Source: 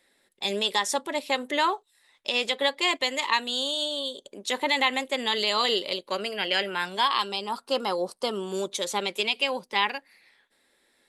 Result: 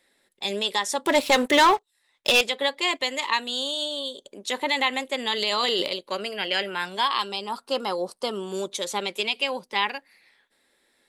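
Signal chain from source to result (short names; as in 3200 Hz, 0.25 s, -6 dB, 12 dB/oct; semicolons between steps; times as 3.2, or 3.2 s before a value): 1.05–2.41 sample leveller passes 3; 5.42–5.88 transient shaper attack -2 dB, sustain +10 dB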